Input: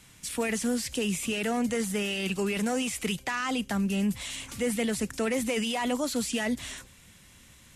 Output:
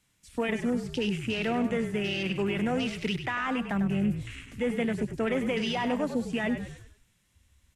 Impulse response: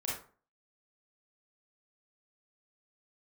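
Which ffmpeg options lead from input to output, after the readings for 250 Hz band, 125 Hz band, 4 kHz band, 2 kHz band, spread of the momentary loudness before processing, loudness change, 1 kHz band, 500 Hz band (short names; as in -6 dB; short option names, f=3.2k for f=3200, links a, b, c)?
+0.5 dB, +3.5 dB, -2.5 dB, -0.5 dB, 4 LU, -0.5 dB, +0.5 dB, +0.5 dB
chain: -filter_complex "[0:a]acrossover=split=8500[a][b];[b]acompressor=threshold=-44dB:ratio=4:attack=1:release=60[c];[a][c]amix=inputs=2:normalize=0,afwtdn=0.0126,asplit=2[d][e];[e]asplit=5[f][g][h][i][j];[f]adelay=99,afreqshift=-46,volume=-9dB[k];[g]adelay=198,afreqshift=-92,volume=-16.5dB[l];[h]adelay=297,afreqshift=-138,volume=-24.1dB[m];[i]adelay=396,afreqshift=-184,volume=-31.6dB[n];[j]adelay=495,afreqshift=-230,volume=-39.1dB[o];[k][l][m][n][o]amix=inputs=5:normalize=0[p];[d][p]amix=inputs=2:normalize=0"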